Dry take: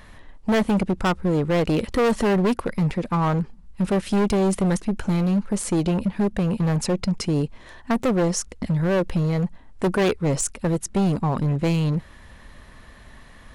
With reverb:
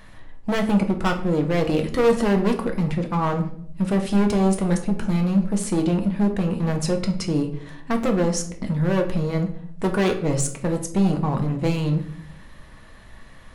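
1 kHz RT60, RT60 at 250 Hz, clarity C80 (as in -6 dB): 0.55 s, 0.95 s, 14.5 dB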